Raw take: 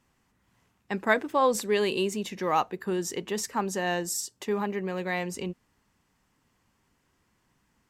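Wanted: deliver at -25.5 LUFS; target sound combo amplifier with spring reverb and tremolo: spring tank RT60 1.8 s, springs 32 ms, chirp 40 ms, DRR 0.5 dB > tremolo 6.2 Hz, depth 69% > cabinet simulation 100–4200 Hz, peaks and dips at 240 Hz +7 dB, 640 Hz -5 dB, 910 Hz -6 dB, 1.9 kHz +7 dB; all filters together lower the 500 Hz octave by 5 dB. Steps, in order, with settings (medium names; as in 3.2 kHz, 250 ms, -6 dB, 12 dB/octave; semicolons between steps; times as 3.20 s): peaking EQ 500 Hz -5.5 dB; spring tank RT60 1.8 s, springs 32 ms, chirp 40 ms, DRR 0.5 dB; tremolo 6.2 Hz, depth 69%; cabinet simulation 100–4200 Hz, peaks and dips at 240 Hz +7 dB, 640 Hz -5 dB, 910 Hz -6 dB, 1.9 kHz +7 dB; trim +4.5 dB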